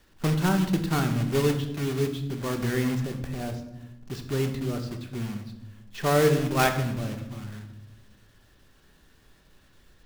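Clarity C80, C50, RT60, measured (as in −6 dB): 11.5 dB, 9.0 dB, 0.90 s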